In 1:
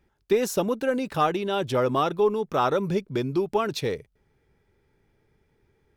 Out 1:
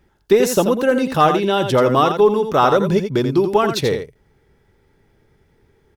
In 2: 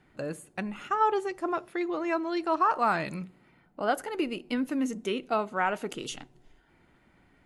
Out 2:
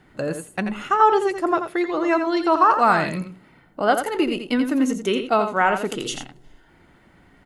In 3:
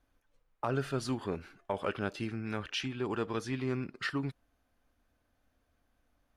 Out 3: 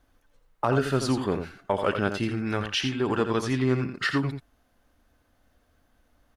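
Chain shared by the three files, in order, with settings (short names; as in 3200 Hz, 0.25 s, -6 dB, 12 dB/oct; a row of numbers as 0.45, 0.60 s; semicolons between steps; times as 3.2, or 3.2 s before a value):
notch 2400 Hz, Q 16; on a send: echo 85 ms -8 dB; on the sum: gain +8.5 dB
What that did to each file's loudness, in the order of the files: +9.0, +9.0, +9.0 LU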